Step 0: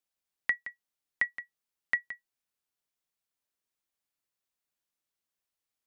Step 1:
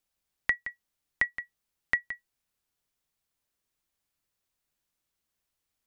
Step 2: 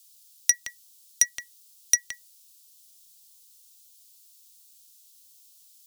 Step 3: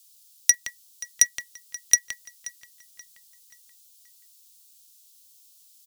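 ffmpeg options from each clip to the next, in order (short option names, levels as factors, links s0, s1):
-filter_complex "[0:a]lowshelf=f=130:g=11,asplit=2[s0][s1];[s1]acompressor=threshold=0.0178:ratio=6,volume=0.708[s2];[s0][s2]amix=inputs=2:normalize=0"
-af "asoftclip=type=tanh:threshold=0.075,aexciter=amount=10.9:drive=8.6:freq=3000"
-filter_complex "[0:a]asplit=2[s0][s1];[s1]acrusher=bits=6:mix=0:aa=0.000001,volume=0.355[s2];[s0][s2]amix=inputs=2:normalize=0,asplit=2[s3][s4];[s4]adelay=530,lowpass=f=4700:p=1,volume=0.168,asplit=2[s5][s6];[s6]adelay=530,lowpass=f=4700:p=1,volume=0.47,asplit=2[s7][s8];[s8]adelay=530,lowpass=f=4700:p=1,volume=0.47,asplit=2[s9][s10];[s10]adelay=530,lowpass=f=4700:p=1,volume=0.47[s11];[s3][s5][s7][s9][s11]amix=inputs=5:normalize=0"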